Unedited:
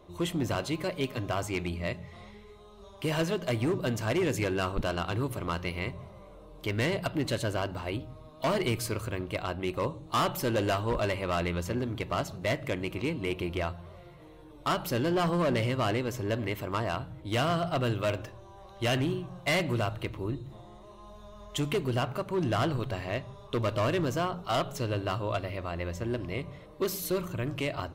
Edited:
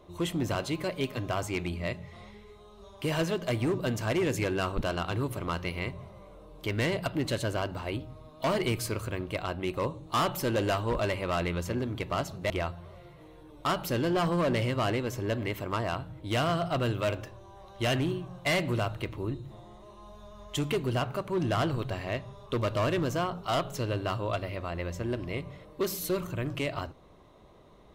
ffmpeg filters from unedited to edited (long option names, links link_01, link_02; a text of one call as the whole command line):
ffmpeg -i in.wav -filter_complex "[0:a]asplit=2[link_01][link_02];[link_01]atrim=end=12.502[link_03];[link_02]atrim=start=13.508[link_04];[link_03][link_04]acrossfade=duration=0.004:curve1=hsin:curve2=hsin" out.wav